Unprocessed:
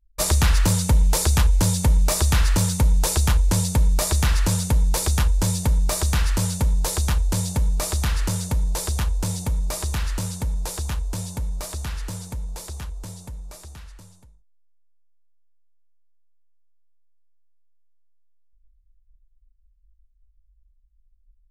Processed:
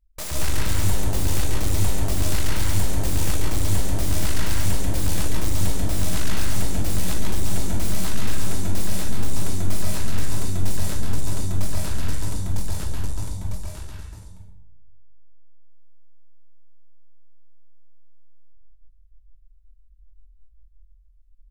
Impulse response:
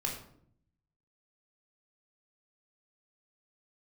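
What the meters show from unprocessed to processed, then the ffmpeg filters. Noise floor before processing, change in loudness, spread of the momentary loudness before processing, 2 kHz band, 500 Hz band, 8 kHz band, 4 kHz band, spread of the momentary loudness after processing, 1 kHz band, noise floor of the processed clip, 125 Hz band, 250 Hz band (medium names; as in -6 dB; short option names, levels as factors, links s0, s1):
-60 dBFS, -4.5 dB, 14 LU, -2.0 dB, -1.5 dB, -4.0 dB, -3.0 dB, 6 LU, -4.0 dB, -51 dBFS, -3.5 dB, -1.0 dB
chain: -filter_complex "[0:a]acontrast=31,aeval=exprs='0.562*(cos(1*acos(clip(val(0)/0.562,-1,1)))-cos(1*PI/2))+0.141*(cos(8*acos(clip(val(0)/0.562,-1,1)))-cos(8*PI/2))':c=same,volume=9.44,asoftclip=hard,volume=0.106,asplit=2[s0][s1];[1:a]atrim=start_sample=2205,asetrate=33957,aresample=44100,adelay=138[s2];[s1][s2]afir=irnorm=-1:irlink=0,volume=0.75[s3];[s0][s3]amix=inputs=2:normalize=0,volume=0.447"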